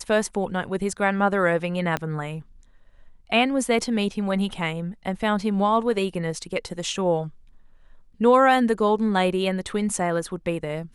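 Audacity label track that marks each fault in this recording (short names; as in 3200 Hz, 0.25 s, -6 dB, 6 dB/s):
1.970000	1.970000	pop -12 dBFS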